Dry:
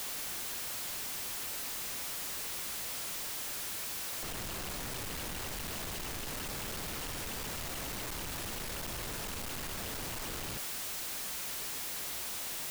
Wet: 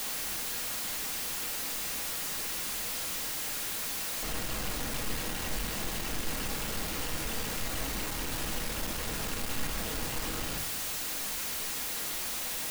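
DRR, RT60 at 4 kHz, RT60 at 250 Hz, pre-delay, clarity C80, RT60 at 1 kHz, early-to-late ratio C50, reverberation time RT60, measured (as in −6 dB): 4.0 dB, 0.40 s, 0.90 s, 4 ms, 16.0 dB, 0.45 s, 11.5 dB, 0.50 s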